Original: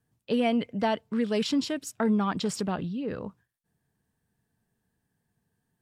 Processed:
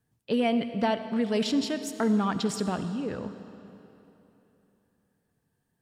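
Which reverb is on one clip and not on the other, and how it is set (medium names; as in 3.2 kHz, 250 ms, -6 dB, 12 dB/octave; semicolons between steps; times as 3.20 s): algorithmic reverb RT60 3.2 s, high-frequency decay 0.85×, pre-delay 25 ms, DRR 10 dB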